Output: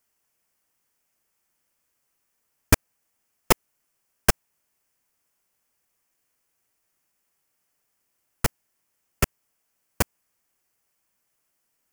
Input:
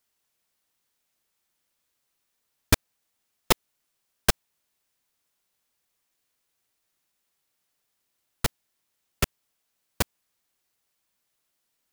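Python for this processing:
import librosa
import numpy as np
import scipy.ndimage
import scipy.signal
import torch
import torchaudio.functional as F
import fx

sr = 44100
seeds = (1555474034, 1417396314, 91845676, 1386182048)

y = fx.peak_eq(x, sr, hz=3800.0, db=-11.0, octaves=0.48)
y = y * 10.0 ** (3.0 / 20.0)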